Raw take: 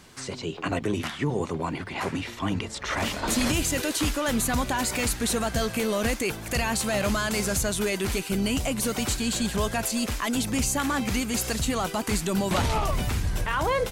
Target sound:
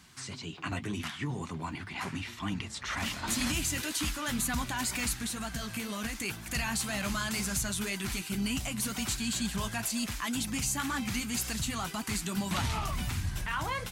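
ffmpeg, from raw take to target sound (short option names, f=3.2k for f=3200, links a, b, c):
-filter_complex "[0:a]highpass=48,equalizer=f=490:w=1.3:g=-14,asettb=1/sr,asplit=3[a][b][c];[a]atrim=end=5.204[d];[b]atrim=start=5.2:end=6.15,asetpts=PTS-STARTPTS,afade=t=in:d=0.004:c=qsin,afade=t=out:st=0.946:d=0.004:c=qsin,acompressor=threshold=-28dB:ratio=6[e];[c]atrim=start=6.146[f];[d][e]acrossfade=d=0.004:c1=hsin:c2=qsin[g];[g][f]acrossfade=d=0.004:c1=qsin:c2=hsin,flanger=delay=3.9:depth=5.9:regen=-49:speed=2:shape=sinusoidal"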